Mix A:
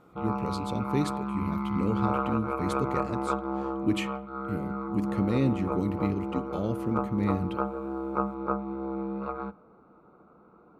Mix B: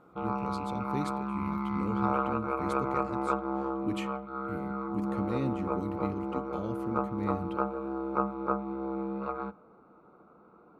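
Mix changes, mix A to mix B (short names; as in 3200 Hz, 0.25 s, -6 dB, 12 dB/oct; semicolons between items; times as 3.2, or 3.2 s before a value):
speech -7.0 dB; background: add low shelf 160 Hz -5.5 dB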